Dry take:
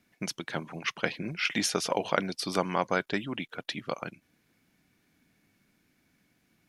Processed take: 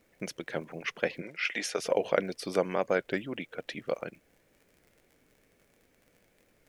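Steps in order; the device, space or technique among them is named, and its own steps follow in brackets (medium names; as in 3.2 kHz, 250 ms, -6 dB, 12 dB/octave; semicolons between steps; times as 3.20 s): warped LP (warped record 33 1/3 rpm, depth 100 cents; crackle 53 per s -44 dBFS; pink noise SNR 32 dB); graphic EQ 500/1000/2000/4000 Hz +11/-5/+5/-4 dB; 1.22–1.79 s: frequency weighting A; trim -5 dB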